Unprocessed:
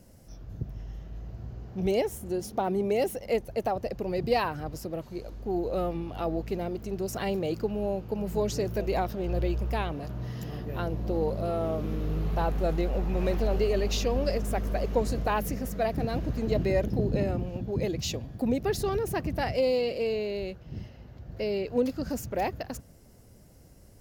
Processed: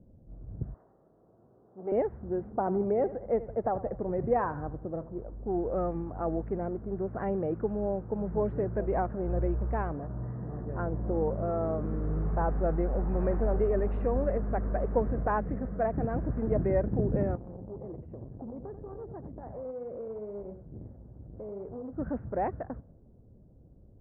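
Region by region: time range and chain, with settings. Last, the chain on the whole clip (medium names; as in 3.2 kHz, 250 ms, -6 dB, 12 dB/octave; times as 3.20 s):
0.74–1.92 s: high-pass 480 Hz + peaking EQ 1.2 kHz +7 dB 0.66 oct
2.57–5.24 s: low-pass 2 kHz + feedback delay 81 ms, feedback 45%, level -16 dB
17.35–21.93 s: compression 16:1, threshold -34 dBFS + delay 89 ms -9 dB + transformer saturation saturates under 360 Hz
whole clip: level-controlled noise filter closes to 410 Hz, open at -22 dBFS; steep low-pass 1.7 kHz 36 dB/octave; trim -1 dB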